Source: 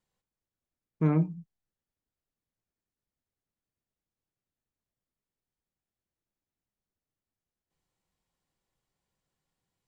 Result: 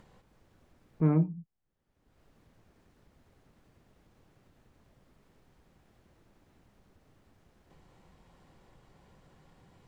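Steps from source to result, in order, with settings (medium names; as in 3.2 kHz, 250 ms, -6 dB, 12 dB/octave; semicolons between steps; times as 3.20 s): upward compressor, threshold -36 dBFS; low-pass 1.2 kHz 6 dB/octave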